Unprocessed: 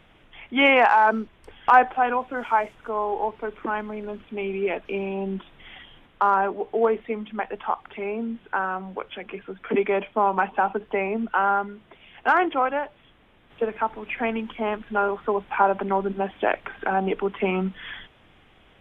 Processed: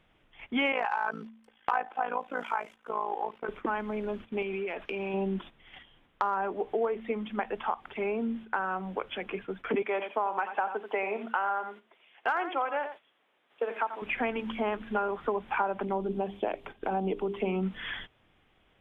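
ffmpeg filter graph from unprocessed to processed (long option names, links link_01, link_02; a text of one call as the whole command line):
ffmpeg -i in.wav -filter_complex "[0:a]asettb=1/sr,asplit=3[link_01][link_02][link_03];[link_01]atrim=end=0.724[link_04];[link_02]atrim=start=0.72:end=3.49,asetpts=PTS-STARTPTS,afade=type=in:duration=0.004:curve=qsin,afade=type=out:start_time=2.766:duration=0.004:curve=qsin,highpass=frequency=430:poles=1,aecho=1:1:3.9:0.33,atrim=end_sample=122157,tremolo=f=55:d=0.857[link_05];[link_03]atrim=start=3.486[link_06];[link_04][link_05]acrossfade=duration=0.004:curve1=hsin:curve2=qsin[link_07];[link_07][link_06]acrossfade=duration=0.004:curve1=qsin:curve2=hsin,asettb=1/sr,asplit=3[link_08][link_09][link_10];[link_08]atrim=end=4.424[link_11];[link_09]atrim=start=4.42:end=5.14,asetpts=PTS-STARTPTS,afade=type=in:duration=0.004:curve=qsin,afade=type=out:start_time=0.716:duration=0.004:curve=qsin,equalizer=frequency=1700:width=0.36:gain=6.5,acompressor=threshold=-30dB:ratio=16:attack=3.2:release=140:knee=1:detection=peak[link_12];[link_10]atrim=start=5.136[link_13];[link_11][link_12]acrossfade=duration=0.004:curve1=hsin:curve2=qsin[link_14];[link_14][link_13]acrossfade=duration=0.004:curve1=qsin:curve2=hsin,asettb=1/sr,asplit=3[link_15][link_16][link_17];[link_15]atrim=end=9.824[link_18];[link_16]atrim=start=9.82:end=14.02,asetpts=PTS-STARTPTS,afade=type=in:duration=0.004:curve=qsin,afade=type=out:start_time=4.196:duration=0.004:curve=qsin,highpass=440,aecho=1:1:87:0.251,atrim=end_sample=185220[link_19];[link_17]atrim=start=14.016[link_20];[link_18][link_19]acrossfade=duration=0.004:curve1=hsin:curve2=qsin[link_21];[link_21][link_20]acrossfade=duration=0.004:curve1=qsin:curve2=hsin,asettb=1/sr,asplit=3[link_22][link_23][link_24];[link_22]atrim=end=15.854[link_25];[link_23]atrim=start=15.85:end=17.63,asetpts=PTS-STARTPTS,afade=type=in:duration=0.004:curve=qsin,afade=type=out:start_time=1.776:duration=0.004:curve=qsin,equalizer=frequency=1600:width=0.99:gain=-13,bandreject=frequency=50:width_type=h:width=6,bandreject=frequency=100:width_type=h:width=6,bandreject=frequency=150:width_type=h:width=6,bandreject=frequency=200:width_type=h:width=6,bandreject=frequency=250:width_type=h:width=6,bandreject=frequency=300:width_type=h:width=6,bandreject=frequency=350:width_type=h:width=6,bandreject=frequency=400:width_type=h:width=6[link_26];[link_24]atrim=start=17.626[link_27];[link_25][link_26]acrossfade=duration=0.004:curve1=hsin:curve2=qsin[link_28];[link_28][link_27]acrossfade=duration=0.004:curve1=qsin:curve2=hsin,agate=range=-11dB:threshold=-42dB:ratio=16:detection=peak,bandreject=frequency=111.8:width_type=h:width=4,bandreject=frequency=223.6:width_type=h:width=4,acompressor=threshold=-27dB:ratio=4" out.wav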